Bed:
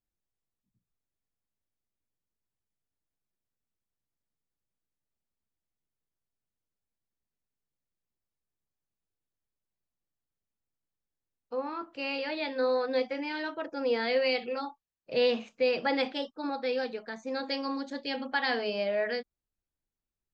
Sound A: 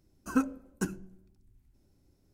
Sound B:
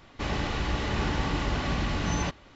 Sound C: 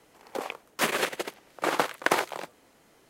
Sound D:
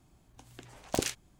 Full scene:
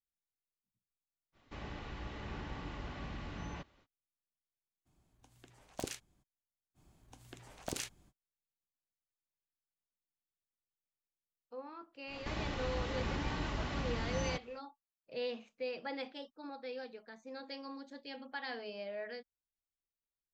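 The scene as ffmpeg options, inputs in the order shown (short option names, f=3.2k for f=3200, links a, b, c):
-filter_complex "[2:a]asplit=2[a][b];[4:a]asplit=2[c][d];[0:a]volume=-13dB[e];[a]acrossover=split=3600[f][g];[g]acompressor=threshold=-49dB:ratio=4:attack=1:release=60[h];[f][h]amix=inputs=2:normalize=0[i];[d]acompressor=threshold=-38dB:ratio=6:attack=41:release=34:knee=1:detection=rms[j];[b]acompressor=mode=upward:threshold=-33dB:ratio=4:attack=45:release=725:knee=2.83:detection=peak[k];[i]atrim=end=2.55,asetpts=PTS-STARTPTS,volume=-15.5dB,afade=t=in:d=0.05,afade=t=out:st=2.5:d=0.05,adelay=1320[l];[c]atrim=end=1.39,asetpts=PTS-STARTPTS,volume=-10.5dB,afade=t=in:d=0.02,afade=t=out:st=1.37:d=0.02,adelay=213885S[m];[j]atrim=end=1.39,asetpts=PTS-STARTPTS,volume=-3dB,afade=t=in:d=0.05,afade=t=out:st=1.34:d=0.05,adelay=297234S[n];[k]atrim=end=2.55,asetpts=PTS-STARTPTS,volume=-9.5dB,afade=t=in:d=0.1,afade=t=out:st=2.45:d=0.1,adelay=12070[o];[e][l][m][n][o]amix=inputs=5:normalize=0"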